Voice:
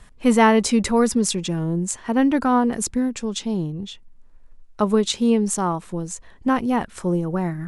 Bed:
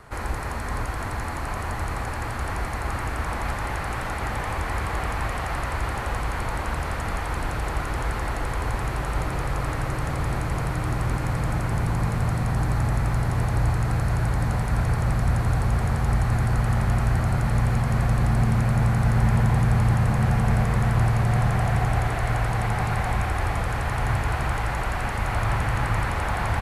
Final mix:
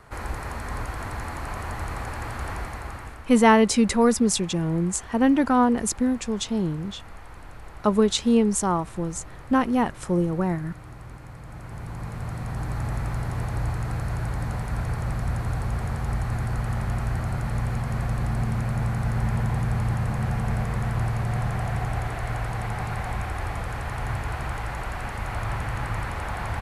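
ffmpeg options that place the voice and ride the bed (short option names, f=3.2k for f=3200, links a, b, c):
-filter_complex "[0:a]adelay=3050,volume=-1dB[a];[1:a]volume=8.5dB,afade=t=out:st=2.49:d=0.76:silence=0.211349,afade=t=in:st=11.44:d=1.49:silence=0.266073[b];[a][b]amix=inputs=2:normalize=0"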